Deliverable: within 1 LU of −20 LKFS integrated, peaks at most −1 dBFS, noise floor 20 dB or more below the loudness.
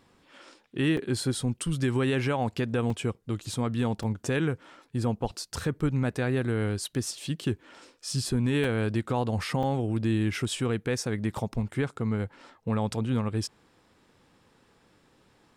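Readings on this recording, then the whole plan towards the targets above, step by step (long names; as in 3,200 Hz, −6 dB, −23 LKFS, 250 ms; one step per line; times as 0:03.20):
number of dropouts 5; longest dropout 3.4 ms; integrated loudness −29.5 LKFS; sample peak −16.5 dBFS; target loudness −20.0 LKFS
→ repair the gap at 0:00.97/0:02.90/0:04.03/0:08.64/0:09.63, 3.4 ms
level +9.5 dB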